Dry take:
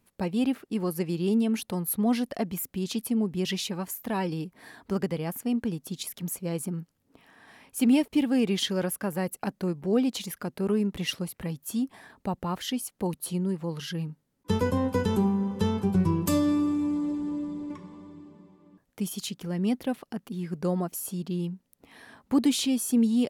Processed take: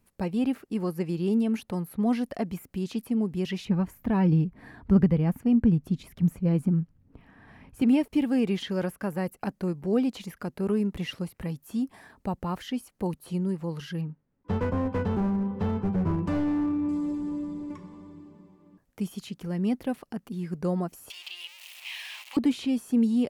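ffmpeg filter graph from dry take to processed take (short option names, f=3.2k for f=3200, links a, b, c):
-filter_complex "[0:a]asettb=1/sr,asplit=3[a][b][c];[a]atrim=end=3.654[d];[b]atrim=start=3.65:end=7.82,asetpts=PTS-STARTPTS,afade=t=in:d=0.004:c=qsin,afade=t=out:st=4.166:d=0.004:c=qsin,bass=f=250:g=13,treble=f=4k:g=-14,aphaser=in_gain=1:out_gain=1:delay=4.2:decay=0.2:speed=1.5:type=triangular[e];[c]atrim=start=7.816[f];[d][e]acrossfade=d=0.004:c1=hsin:c2=qsin[g];[g][f]acrossfade=d=0.004:c1=qsin:c2=hsin,asettb=1/sr,asplit=3[h][i][j];[h]atrim=end=14.014[k];[i]atrim=start=14.01:end=16.89,asetpts=PTS-STARTPTS,afade=t=in:d=0.004:c=qsin,afade=t=out:st=2.876:d=0.004:c=qsin,lowpass=2.2k,asoftclip=type=hard:threshold=-23dB[l];[j]atrim=start=16.886[m];[k][l]acrossfade=d=0.004:c1=hsin:c2=qsin[n];[n][m]acrossfade=d=0.004:c1=qsin:c2=hsin,asettb=1/sr,asplit=3[o][p][q];[o]atrim=end=21.104[r];[p]atrim=start=21.1:end=22.37,asetpts=PTS-STARTPTS,afade=t=in:d=0.004:c=qsin,afade=t=out:st=1.266:d=0.004:c=qsin,aeval=exprs='val(0)+0.5*0.0119*sgn(val(0))':c=same,highpass=f=950:w=0.5412,highpass=f=950:w=1.3066,highshelf=f=2k:t=q:w=3:g=11[s];[q]atrim=start=22.366[t];[r][s]acrossfade=d=0.004:c1=hsin:c2=qsin[u];[u][t]acrossfade=d=0.004:c1=qsin:c2=hsin,lowshelf=f=76:g=8.5,acrossover=split=3200[v][w];[w]acompressor=threshold=-47dB:ratio=4:attack=1:release=60[x];[v][x]amix=inputs=2:normalize=0,equalizer=f=3.5k:w=3:g=-3.5,volume=-1dB"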